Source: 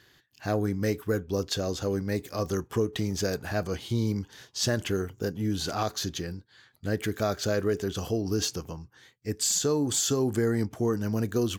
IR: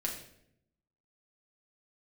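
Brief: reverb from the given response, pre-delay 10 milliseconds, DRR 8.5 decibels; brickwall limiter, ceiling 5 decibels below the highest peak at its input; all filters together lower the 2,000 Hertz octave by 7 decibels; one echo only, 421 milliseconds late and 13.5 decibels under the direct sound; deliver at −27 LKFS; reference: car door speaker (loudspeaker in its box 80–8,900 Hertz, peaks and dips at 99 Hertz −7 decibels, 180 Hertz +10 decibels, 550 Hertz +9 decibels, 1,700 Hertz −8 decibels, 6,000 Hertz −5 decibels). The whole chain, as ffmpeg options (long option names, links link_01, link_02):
-filter_complex "[0:a]equalizer=frequency=2000:width_type=o:gain=-3.5,alimiter=limit=-21dB:level=0:latency=1,aecho=1:1:421:0.211,asplit=2[link_01][link_02];[1:a]atrim=start_sample=2205,adelay=10[link_03];[link_02][link_03]afir=irnorm=-1:irlink=0,volume=-11dB[link_04];[link_01][link_04]amix=inputs=2:normalize=0,highpass=80,equalizer=frequency=99:width_type=q:width=4:gain=-7,equalizer=frequency=180:width_type=q:width=4:gain=10,equalizer=frequency=550:width_type=q:width=4:gain=9,equalizer=frequency=1700:width_type=q:width=4:gain=-8,equalizer=frequency=6000:width_type=q:width=4:gain=-5,lowpass=frequency=8900:width=0.5412,lowpass=frequency=8900:width=1.3066,volume=1.5dB"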